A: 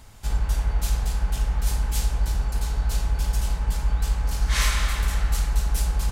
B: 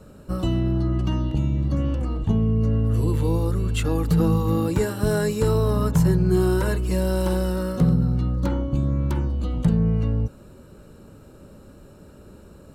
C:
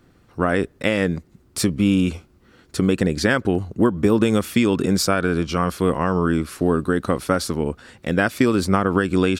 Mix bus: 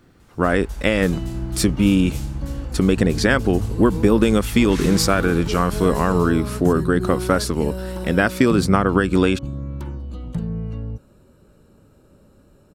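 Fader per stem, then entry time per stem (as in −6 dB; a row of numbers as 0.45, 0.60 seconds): −8.0, −6.5, +1.5 decibels; 0.20, 0.70, 0.00 seconds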